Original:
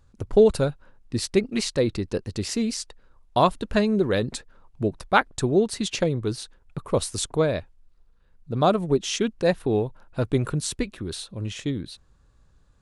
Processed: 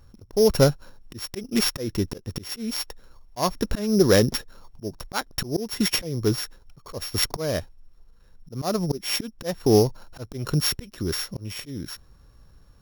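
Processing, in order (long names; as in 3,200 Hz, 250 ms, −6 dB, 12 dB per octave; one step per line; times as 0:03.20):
samples sorted by size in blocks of 8 samples
volume swells 320 ms
level +6.5 dB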